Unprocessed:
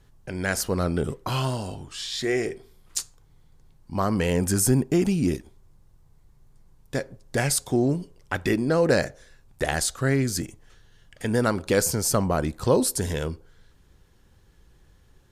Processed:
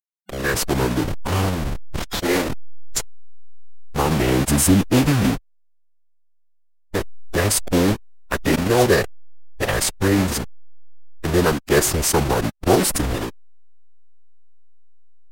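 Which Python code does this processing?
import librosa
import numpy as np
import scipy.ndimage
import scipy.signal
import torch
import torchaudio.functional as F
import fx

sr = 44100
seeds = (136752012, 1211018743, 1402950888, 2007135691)

y = fx.delta_hold(x, sr, step_db=-22.0)
y = fx.pitch_keep_formants(y, sr, semitones=-5.5)
y = y * librosa.db_to_amplitude(6.0)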